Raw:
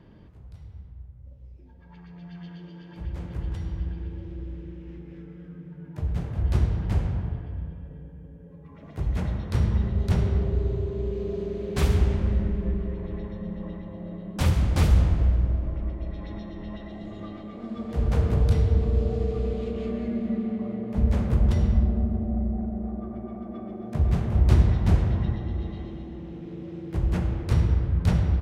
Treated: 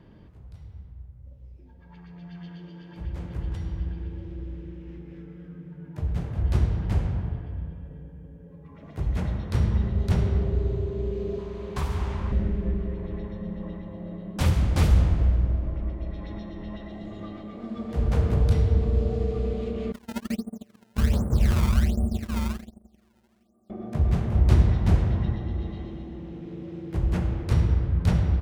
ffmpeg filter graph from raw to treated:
ffmpeg -i in.wav -filter_complex "[0:a]asettb=1/sr,asplit=3[link_01][link_02][link_03];[link_01]atrim=end=11.384[link_04];[link_02]atrim=start=11.38:end=12.32,asetpts=PTS-STARTPTS,afade=type=in:duration=0.004:curve=qsin,afade=type=out:start_time=0.936:duration=0.004:curve=qsin,equalizer=frequency=1000:width=1.8:gain=13,acrossover=split=130|1300[link_05][link_06][link_07];[link_05]acompressor=threshold=-26dB:ratio=4[link_08];[link_06]acompressor=threshold=-35dB:ratio=4[link_09];[link_07]acompressor=threshold=-41dB:ratio=4[link_10];[link_08][link_09][link_10]amix=inputs=3:normalize=0[link_11];[link_03]atrim=start=12.316[link_12];[link_04][link_11]acrossfade=duration=0.004:curve1=hsin:curve2=qsin[link_13];[link_13][link_12]acrossfade=duration=0.004:curve1=qsin:curve2=hsin,asettb=1/sr,asplit=3[link_14][link_15][link_16];[link_14]atrim=end=19.924[link_17];[link_15]atrim=start=19.92:end=23.7,asetpts=PTS-STARTPTS,afade=type=in:duration=0.004:curve=qsin,afade=type=out:start_time=3.776:duration=0.004:curve=qsin,lowpass=frequency=1400:width=0.5412,lowpass=frequency=1400:width=1.3066,agate=range=-29dB:threshold=-27dB:ratio=16:release=100:detection=peak,acrusher=samples=22:mix=1:aa=0.000001:lfo=1:lforange=35.2:lforate=1.3[link_18];[link_16]atrim=start=23.696[link_19];[link_17][link_18]acrossfade=duration=0.004:curve1=hsin:curve2=qsin[link_20];[link_20][link_19]acrossfade=duration=0.004:curve1=qsin:curve2=hsin" out.wav

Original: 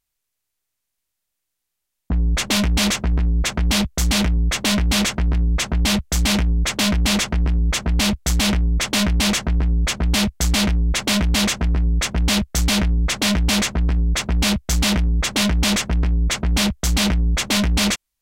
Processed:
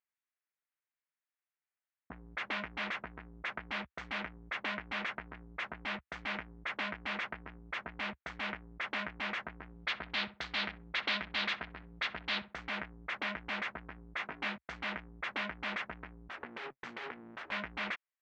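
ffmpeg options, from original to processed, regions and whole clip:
ffmpeg -i in.wav -filter_complex "[0:a]asettb=1/sr,asplit=3[link_01][link_02][link_03];[link_01]atrim=end=9.694[link_04];[link_02]atrim=start=9.69:end=12.54,asetpts=PTS-STARTPTS,afade=type=in:duration=0.004:curve=qsin,afade=type=out:start_time=2.846:duration=0.004:curve=qsin,equalizer=frequency=4100:width_type=o:width=0.99:gain=13.5,asplit=2[link_05][link_06];[link_06]adelay=64,lowpass=frequency=1200:poles=1,volume=-13dB,asplit=2[link_07][link_08];[link_08]adelay=64,lowpass=frequency=1200:poles=1,volume=0.22,asplit=2[link_09][link_10];[link_10]adelay=64,lowpass=frequency=1200:poles=1,volume=0.22[link_11];[link_05][link_07][link_09][link_11]amix=inputs=4:normalize=0,atrim=end_sample=125685[link_12];[link_03]atrim=start=12.536[link_13];[link_04][link_12]acrossfade=duration=0.004:curve1=hsin:curve2=qsin[link_14];[link_14][link_13]acrossfade=duration=0.004:curve1=qsin:curve2=hsin,asettb=1/sr,asplit=3[link_15][link_16][link_17];[link_15]atrim=end=14.174[link_18];[link_16]atrim=start=14.17:end=14.58,asetpts=PTS-STARTPTS,afade=type=in:duration=0.004:curve=qsin,afade=type=out:start_time=0.406:duration=0.004:curve=qsin,highpass=120,asplit=2[link_19][link_20];[link_20]adelay=20,volume=-6dB[link_21];[link_19][link_21]amix=inputs=2:normalize=0,atrim=end_sample=18081[link_22];[link_17]atrim=start=14.576[link_23];[link_18][link_22]acrossfade=duration=0.004:curve1=hsin:curve2=qsin[link_24];[link_24][link_23]acrossfade=duration=0.004:curve1=qsin:curve2=hsin,asettb=1/sr,asplit=3[link_25][link_26][link_27];[link_25]atrim=end=16.294[link_28];[link_26]atrim=start=16.29:end=17.52,asetpts=PTS-STARTPTS,afade=type=in:duration=0.004:curve=qsin,afade=type=out:start_time=1.226:duration=0.004:curve=qsin,highpass=100,lowshelf=frequency=240:gain=6.5,aeval=exprs='abs(val(0))':channel_layout=same[link_29];[link_27]atrim=start=17.516[link_30];[link_28][link_29]acrossfade=duration=0.004:curve1=hsin:curve2=qsin[link_31];[link_31][link_30]acrossfade=duration=0.004:curve1=qsin:curve2=hsin,lowpass=frequency=1900:width=0.5412,lowpass=frequency=1900:width=1.3066,acompressor=threshold=-19dB:ratio=6,aderivative,volume=6.5dB" out.wav

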